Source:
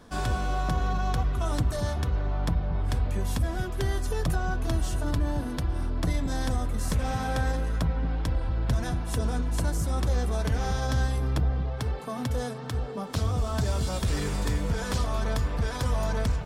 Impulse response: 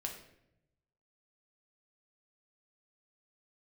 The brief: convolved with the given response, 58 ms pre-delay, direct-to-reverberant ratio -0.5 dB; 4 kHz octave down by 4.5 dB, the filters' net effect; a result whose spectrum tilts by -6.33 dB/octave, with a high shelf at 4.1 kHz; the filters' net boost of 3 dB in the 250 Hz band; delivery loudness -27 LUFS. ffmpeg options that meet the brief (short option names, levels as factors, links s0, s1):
-filter_complex "[0:a]equalizer=f=250:t=o:g=4,equalizer=f=4000:t=o:g=-8.5,highshelf=f=4100:g=4,asplit=2[s0][s1];[1:a]atrim=start_sample=2205,adelay=58[s2];[s1][s2]afir=irnorm=-1:irlink=0,volume=1.12[s3];[s0][s3]amix=inputs=2:normalize=0,volume=0.841"